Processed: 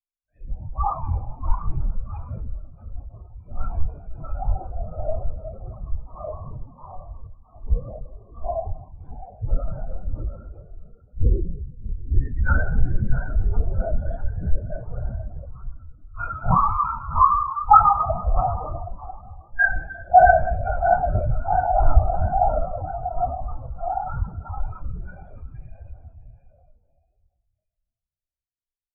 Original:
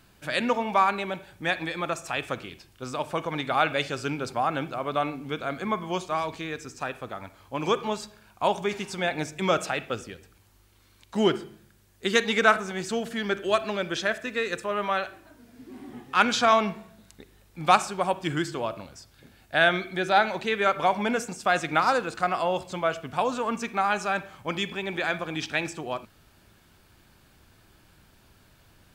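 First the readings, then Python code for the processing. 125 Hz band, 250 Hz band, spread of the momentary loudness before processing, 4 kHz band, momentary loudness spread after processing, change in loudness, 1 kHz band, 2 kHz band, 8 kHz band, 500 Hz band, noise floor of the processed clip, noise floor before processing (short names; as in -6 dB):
+12.0 dB, -7.5 dB, 13 LU, under -40 dB, 21 LU, +3.0 dB, +4.5 dB, -2.5 dB, under -40 dB, -1.0 dB, -82 dBFS, -59 dBFS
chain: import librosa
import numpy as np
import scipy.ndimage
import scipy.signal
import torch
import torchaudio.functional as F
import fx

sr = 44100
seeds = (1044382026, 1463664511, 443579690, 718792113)

p1 = fx.low_shelf(x, sr, hz=500.0, db=3.0)
p2 = fx.rev_spring(p1, sr, rt60_s=3.8, pass_ms=(31,), chirp_ms=35, drr_db=-6.0)
p3 = 10.0 ** (-11.0 / 20.0) * np.tanh(p2 / 10.0 ** (-11.0 / 20.0))
p4 = p2 + (p3 * librosa.db_to_amplitude(-4.5))
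p5 = fx.add_hum(p4, sr, base_hz=50, snr_db=22)
p6 = p5 + fx.echo_feedback(p5, sr, ms=651, feedback_pct=55, wet_db=-3.5, dry=0)
p7 = fx.lpc_vocoder(p6, sr, seeds[0], excitation='whisper', order=8)
p8 = fx.spectral_expand(p7, sr, expansion=4.0)
y = p8 * librosa.db_to_amplitude(-3.5)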